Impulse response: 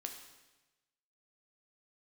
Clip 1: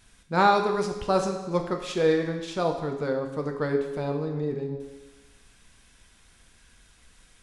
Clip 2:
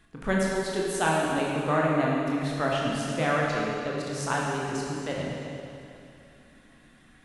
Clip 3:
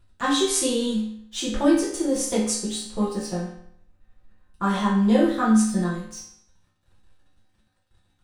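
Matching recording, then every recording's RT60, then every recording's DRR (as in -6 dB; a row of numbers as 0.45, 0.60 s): 1; 1.1, 2.7, 0.65 s; 3.0, -4.0, -8.5 dB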